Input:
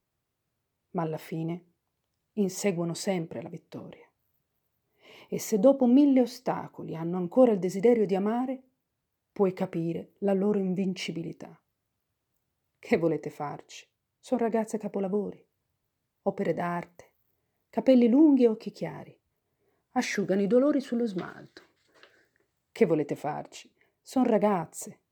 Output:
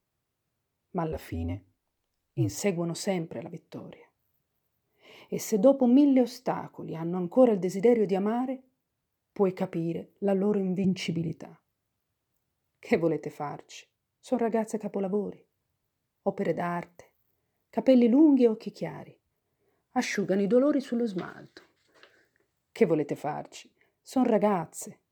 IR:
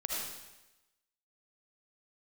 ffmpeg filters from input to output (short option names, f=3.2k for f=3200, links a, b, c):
-filter_complex "[0:a]asettb=1/sr,asplit=3[a][b][c];[a]atrim=end=1.124[d];[b]atrim=start=1.12:end=2.6,asetpts=PTS-STARTPTS,afade=t=in:d=0.004:c=qsin,afade=t=out:st=1.476:d=0.004:c=qsin,afreqshift=-75[e];[c]atrim=start=2.596[f];[d][e]acrossfade=d=0.004:c1=hsin:c2=qsin[g];[g][f]acrossfade=d=0.004:c1=qsin:c2=hsin,asettb=1/sr,asplit=3[h][i][j];[h]atrim=end=10.844[k];[i]atrim=start=10.84:end=11.4,asetpts=PTS-STARTPTS,afade=t=in:d=0.004:c=qsin,afade=t=out:st=0.556:d=0.004:c=qsin,equalizer=f=110:t=o:w=1.1:g=15[l];[j]atrim=start=11.396[m];[k][l]acrossfade=d=0.004:c1=hsin:c2=qsin[n];[n][m]acrossfade=d=0.004:c1=qsin:c2=hsin"